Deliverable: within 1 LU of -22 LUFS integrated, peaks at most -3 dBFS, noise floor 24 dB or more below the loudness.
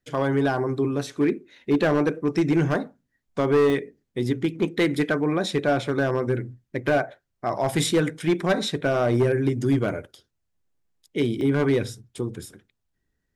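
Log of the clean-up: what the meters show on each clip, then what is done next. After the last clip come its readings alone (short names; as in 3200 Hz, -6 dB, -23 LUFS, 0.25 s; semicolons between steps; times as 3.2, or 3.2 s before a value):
clipped 1.3%; flat tops at -14.5 dBFS; dropouts 2; longest dropout 1.1 ms; loudness -24.0 LUFS; peak -14.5 dBFS; loudness target -22.0 LUFS
-> clip repair -14.5 dBFS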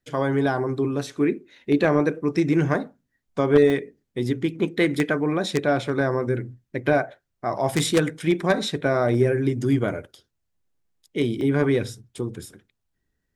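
clipped 0.0%; dropouts 2; longest dropout 1.1 ms
-> interpolate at 3.7/11.41, 1.1 ms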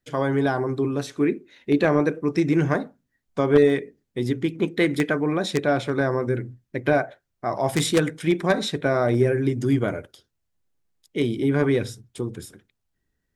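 dropouts 0; loudness -23.5 LUFS; peak -5.5 dBFS; loudness target -22.0 LUFS
-> gain +1.5 dB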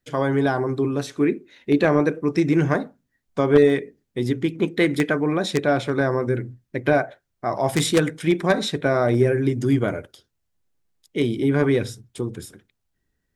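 loudness -22.0 LUFS; peak -4.0 dBFS; noise floor -76 dBFS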